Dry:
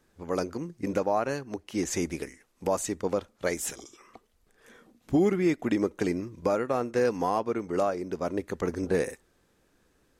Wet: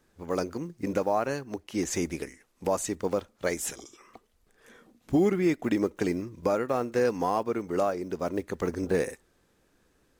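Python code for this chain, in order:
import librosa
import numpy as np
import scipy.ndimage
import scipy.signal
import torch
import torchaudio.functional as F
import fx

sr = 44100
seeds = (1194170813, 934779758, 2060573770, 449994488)

y = fx.block_float(x, sr, bits=7)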